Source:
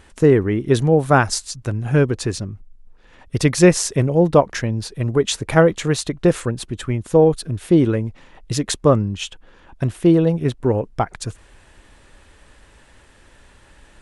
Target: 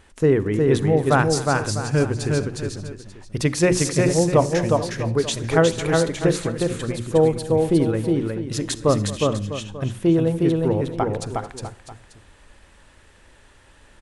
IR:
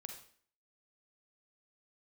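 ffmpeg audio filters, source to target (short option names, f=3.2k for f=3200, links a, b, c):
-filter_complex "[0:a]bandreject=f=60:t=h:w=6,bandreject=f=120:t=h:w=6,bandreject=f=180:t=h:w=6,bandreject=f=240:t=h:w=6,bandreject=f=300:t=h:w=6,bandreject=f=360:t=h:w=6,aecho=1:1:222|361|429|440|650|890:0.126|0.708|0.106|0.133|0.224|0.126,asplit=2[a][b];[1:a]atrim=start_sample=2205[c];[b][c]afir=irnorm=-1:irlink=0,volume=-7.5dB[d];[a][d]amix=inputs=2:normalize=0,volume=-5.5dB"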